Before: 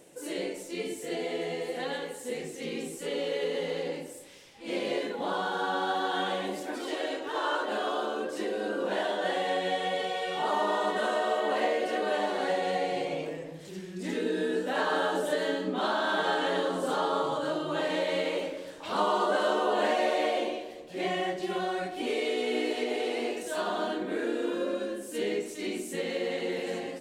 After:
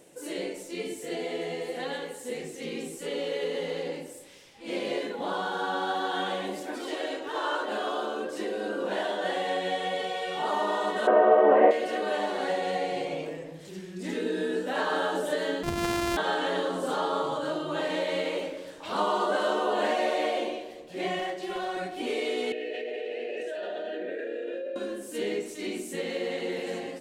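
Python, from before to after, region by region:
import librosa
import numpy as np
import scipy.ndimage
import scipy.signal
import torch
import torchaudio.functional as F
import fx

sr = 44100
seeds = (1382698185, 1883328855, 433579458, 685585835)

y = fx.chain(x, sr, fx.lowpass(hz=2300.0, slope=24),
    fx.peak_eq(hz=450.0, db=11.5, octaves=2.4), at=(11.07, 11.71))
y = fx.chain(y, sr, fx.sample_sort(block=128),
    fx.low_shelf(hz=93.0, db=11.0),
    fx.resample_linear(factor=2), at=(15.63, 16.17))
y = fx.chain(y, sr, fx.bass_treble(bass_db=-8, treble_db=-1),
    fx.hum_notches(base_hz=60, count=7),
    fx.clip_hard(threshold_db=-26.5), at=(21.19, 21.77))
y = fx.chain(y, sr, fx.vowel_filter(vowel='e'),
    fx.notch(hz=510.0, q=9.6),
    fx.env_flatten(amount_pct=100), at=(22.52, 24.76))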